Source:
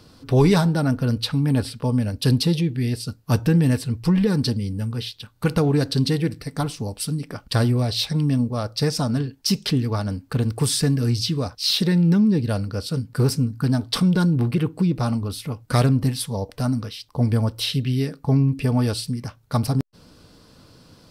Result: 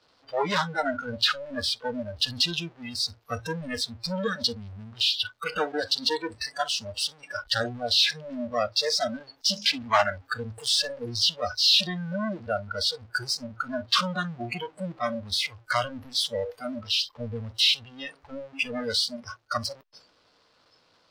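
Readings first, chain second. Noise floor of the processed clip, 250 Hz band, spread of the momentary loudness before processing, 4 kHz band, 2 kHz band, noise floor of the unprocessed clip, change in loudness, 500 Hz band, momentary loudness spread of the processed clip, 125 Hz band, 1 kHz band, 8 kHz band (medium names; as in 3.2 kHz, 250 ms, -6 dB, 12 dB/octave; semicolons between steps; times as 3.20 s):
-64 dBFS, -15.0 dB, 9 LU, +4.0 dB, +4.0 dB, -53 dBFS, -4.5 dB, -4.5 dB, 12 LU, -20.0 dB, +1.5 dB, -3.0 dB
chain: time-frequency box 9.91–10.18 s, 600–2800 Hz +10 dB; expander -38 dBFS; power-law waveshaper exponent 0.35; three-band isolator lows -18 dB, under 460 Hz, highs -23 dB, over 5.5 kHz; spectral noise reduction 25 dB; trim -4.5 dB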